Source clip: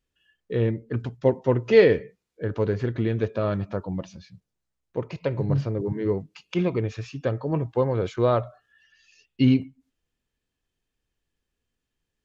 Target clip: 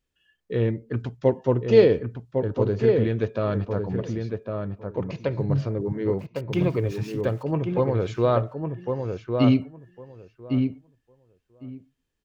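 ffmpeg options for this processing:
-filter_complex "[0:a]asettb=1/sr,asplit=3[s0][s1][s2];[s0]atrim=end=1.474[s3];[s1]atrim=start=1.47:end=2.79,asetpts=PTS-STARTPTS,afade=t=in:d=0.004:c=qsin,afade=t=out:st=1.316:d=0.004:c=qsin,equalizer=f=1900:t=o:w=0.75:g=-9[s4];[s2]atrim=start=2.786[s5];[s3][s4]acrossfade=d=0.004:c1=hsin:c2=qsin[s6];[s6][s5]acrossfade=d=0.004:c1=qsin:c2=hsin,asettb=1/sr,asplit=3[s7][s8][s9];[s7]atrim=end=6.194[s10];[s8]atrim=start=6.19:end=7.43,asetpts=PTS-STARTPTS,afade=t=in:d=0.004:c=qsin,afade=t=out:st=1.236:d=0.004:c=qsin,aeval=exprs='val(0)*gte(abs(val(0)),0.00473)':c=same[s11];[s9]atrim=start=7.426[s12];[s10][s11]acrossfade=d=0.004:c1=hsin:c2=qsin[s13];[s13][s12]acrossfade=d=0.004:c1=qsin:c2=hsin,asplit=2[s14][s15];[s15]adelay=1105,lowpass=f=1600:p=1,volume=0.596,asplit=2[s16][s17];[s17]adelay=1105,lowpass=f=1600:p=1,volume=0.16,asplit=2[s18][s19];[s19]adelay=1105,lowpass=f=1600:p=1,volume=0.16[s20];[s14][s16][s18][s20]amix=inputs=4:normalize=0"

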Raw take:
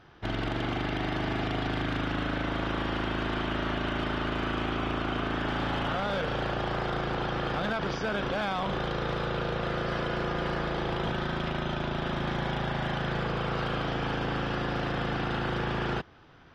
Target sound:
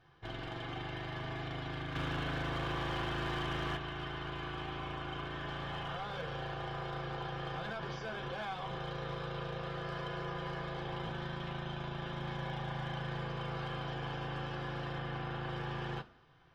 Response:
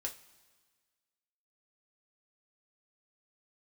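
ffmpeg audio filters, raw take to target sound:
-filter_complex "[0:a]asettb=1/sr,asplit=3[s0][s1][s2];[s0]atrim=end=14.984[s3];[s1]atrim=start=14.98:end=15.49,asetpts=PTS-STARTPTS,afade=t=in:d=0.004:c=qsin,afade=t=out:st=0.506:d=0.004:c=qsin,acrossover=split=3600[s4][s5];[s5]acompressor=threshold=0.00251:ratio=4:attack=1:release=60[s6];[s4][s6]amix=inputs=2:normalize=0[s7];[s2]atrim=start=15.486[s8];[s3][s7]acrossfade=d=0.004:c1=hsin:c2=qsin[s9];[s9][s8]acrossfade=d=0.004:c1=qsin:c2=hsin[s10];[1:a]atrim=start_sample=2205,asetrate=88200,aresample=44100[s11];[s10][s11]afir=irnorm=-1:irlink=0,asettb=1/sr,asplit=3[s12][s13][s14];[s12]atrim=end=1.954[s15];[s13]atrim=start=1.95:end=3.77,asetpts=PTS-STARTPTS,afade=t=in:d=0.004:c=qsin,afade=t=out:st=1.816:d=0.004:c=qsin,acontrast=34[s16];[s14]atrim=start=3.766[s17];[s15][s16]acrossfade=d=0.004:c1=hsin:c2=qsin[s18];[s18][s17]acrossfade=d=0.004:c1=qsin:c2=hsin,asoftclip=type=hard:threshold=0.0376,volume=0.708"

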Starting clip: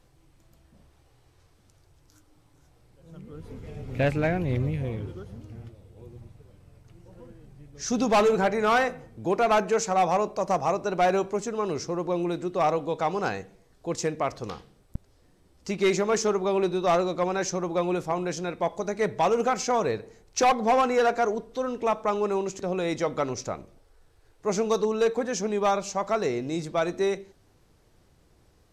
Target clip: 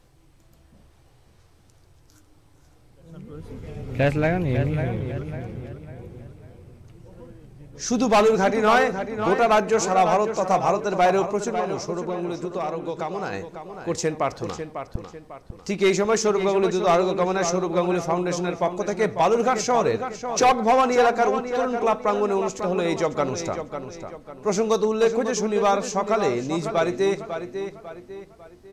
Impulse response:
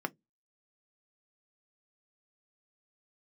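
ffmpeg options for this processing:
-filter_complex "[0:a]asettb=1/sr,asplit=3[s0][s1][s2];[s0]atrim=end=11.504[s3];[s1]atrim=start=11.5:end=13.33,asetpts=PTS-STARTPTS,afade=t=in:d=0.004:c=qsin,afade=t=out:st=1.826:d=0.004:c=qsin,acompressor=threshold=0.0355:ratio=6[s4];[s2]atrim=start=13.326[s5];[s3][s4]acrossfade=d=0.004:c1=hsin:c2=qsin[s6];[s6][s5]acrossfade=d=0.004:c1=qsin:c2=hsin,asplit=2[s7][s8];[s8]adelay=548,lowpass=f=4100:p=1,volume=0.376,asplit=2[s9][s10];[s10]adelay=548,lowpass=f=4100:p=1,volume=0.4,asplit=2[s11][s12];[s12]adelay=548,lowpass=f=4100:p=1,volume=0.4,asplit=2[s13][s14];[s14]adelay=548,lowpass=f=4100:p=1,volume=0.4[s15];[s9][s11][s13][s15]amix=inputs=4:normalize=0[s16];[s7][s16]amix=inputs=2:normalize=0,volume=1.5"

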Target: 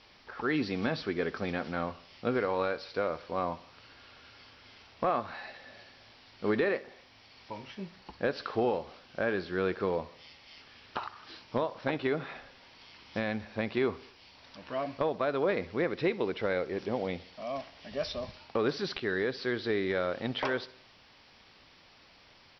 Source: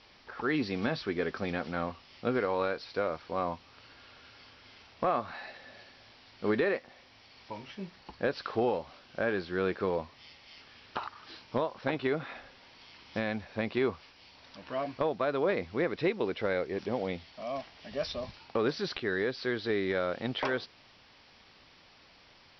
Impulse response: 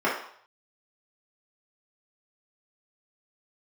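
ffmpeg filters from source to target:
-af "aecho=1:1:65|130|195|260:0.106|0.0572|0.0309|0.0167"

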